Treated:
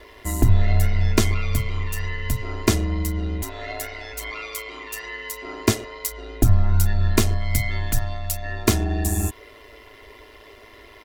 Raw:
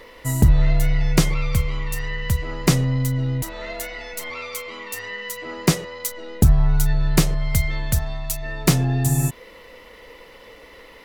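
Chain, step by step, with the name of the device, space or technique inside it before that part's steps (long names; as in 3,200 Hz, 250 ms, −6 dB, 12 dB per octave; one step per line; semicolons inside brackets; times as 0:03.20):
ring-modulated robot voice (ring modulation 54 Hz; comb filter 2.9 ms, depth 72%)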